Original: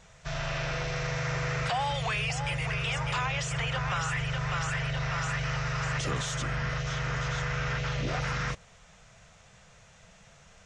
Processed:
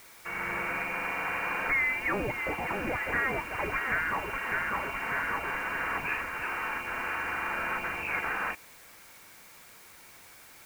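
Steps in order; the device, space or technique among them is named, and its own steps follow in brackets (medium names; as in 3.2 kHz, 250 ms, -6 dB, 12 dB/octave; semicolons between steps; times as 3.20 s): scrambled radio voice (band-pass 370–3100 Hz; frequency inversion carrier 2.9 kHz; white noise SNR 21 dB); trim +3 dB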